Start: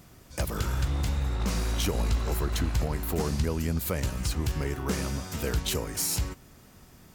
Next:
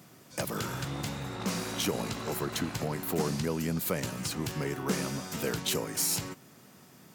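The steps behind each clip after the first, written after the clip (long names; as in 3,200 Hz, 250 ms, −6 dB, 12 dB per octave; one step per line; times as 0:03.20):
high-pass filter 130 Hz 24 dB per octave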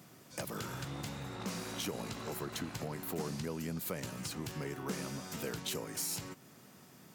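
downward compressor 1.5 to 1, threshold −42 dBFS, peak gain reduction 6.5 dB
level −2.5 dB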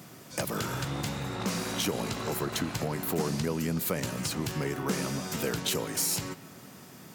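convolution reverb RT60 1.1 s, pre-delay 95 ms, DRR 15.5 dB
level +8.5 dB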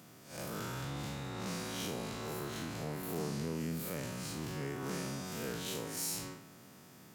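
spectrum smeared in time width 122 ms
level −6 dB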